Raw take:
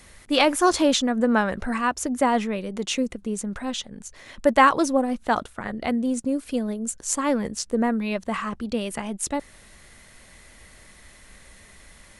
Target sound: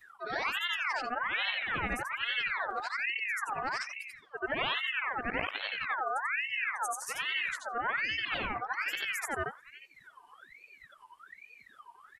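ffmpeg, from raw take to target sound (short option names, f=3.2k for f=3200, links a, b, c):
-af "afftfilt=real='re':imag='-im':win_size=8192:overlap=0.75,equalizer=f=250:t=o:w=0.67:g=4,equalizer=f=630:t=o:w=0.67:g=4,equalizer=f=2.5k:t=o:w=0.67:g=-3,equalizer=f=6.3k:t=o:w=0.67:g=-7,areverse,acompressor=threshold=-31dB:ratio=10,areverse,bandreject=f=50:t=h:w=6,bandreject=f=100:t=h:w=6,bandreject=f=150:t=h:w=6,bandreject=f=200:t=h:w=6,bandreject=f=250:t=h:w=6,bandreject=f=300:t=h:w=6,bandreject=f=350:t=h:w=6,aecho=1:1:356|712:0.1|0.03,afftdn=nr=21:nf=-45,acompressor=mode=upward:threshold=-53dB:ratio=2.5,adynamicequalizer=threshold=0.00224:dfrequency=400:dqfactor=4.5:tfrequency=400:tqfactor=4.5:attack=5:release=100:ratio=0.375:range=2.5:mode=cutabove:tftype=bell,aeval=exprs='val(0)*sin(2*PI*1700*n/s+1700*0.45/1.2*sin(2*PI*1.2*n/s))':c=same,volume=4.5dB"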